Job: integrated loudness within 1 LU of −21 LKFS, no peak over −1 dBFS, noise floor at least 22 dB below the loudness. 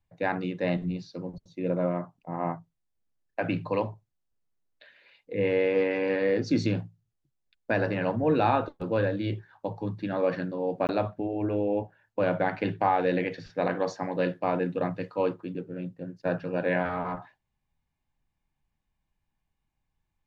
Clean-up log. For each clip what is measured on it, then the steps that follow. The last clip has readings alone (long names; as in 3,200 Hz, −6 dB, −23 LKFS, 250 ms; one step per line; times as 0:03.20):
number of dropouts 1; longest dropout 19 ms; integrated loudness −29.0 LKFS; sample peak −12.0 dBFS; target loudness −21.0 LKFS
→ repair the gap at 0:10.87, 19 ms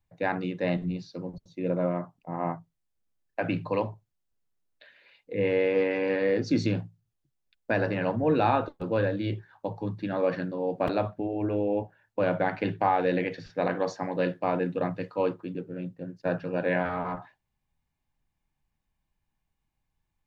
number of dropouts 0; integrated loudness −29.0 LKFS; sample peak −12.0 dBFS; target loudness −21.0 LKFS
→ level +8 dB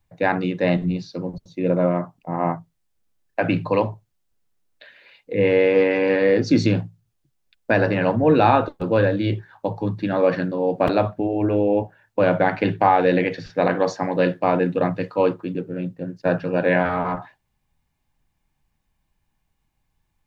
integrated loudness −21.0 LKFS; sample peak −4.0 dBFS; background noise floor −73 dBFS